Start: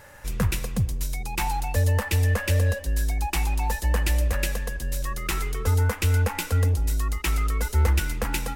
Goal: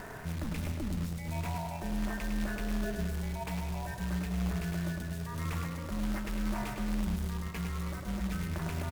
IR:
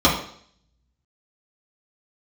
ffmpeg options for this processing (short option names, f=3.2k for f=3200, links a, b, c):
-filter_complex "[0:a]highshelf=f=3.4k:g=-12,areverse,acompressor=threshold=-29dB:ratio=12,areverse,alimiter=level_in=6.5dB:limit=-24dB:level=0:latency=1:release=27,volume=-6.5dB,acompressor=mode=upward:threshold=-39dB:ratio=2.5,aeval=exprs='val(0)*sin(2*PI*130*n/s)':c=same,asplit=2[a][b];[b]adelay=101,lowpass=f=4.8k:p=1,volume=-5dB,asplit=2[c][d];[d]adelay=101,lowpass=f=4.8k:p=1,volume=0.5,asplit=2[e][f];[f]adelay=101,lowpass=f=4.8k:p=1,volume=0.5,asplit=2[g][h];[h]adelay=101,lowpass=f=4.8k:p=1,volume=0.5,asplit=2[i][j];[j]adelay=101,lowpass=f=4.8k:p=1,volume=0.5,asplit=2[k][l];[l]adelay=101,lowpass=f=4.8k:p=1,volume=0.5[m];[c][e][g][i][k][m]amix=inputs=6:normalize=0[n];[a][n]amix=inputs=2:normalize=0,acrusher=bits=3:mode=log:mix=0:aa=0.000001,asetrate=42336,aresample=44100,volume=3.5dB"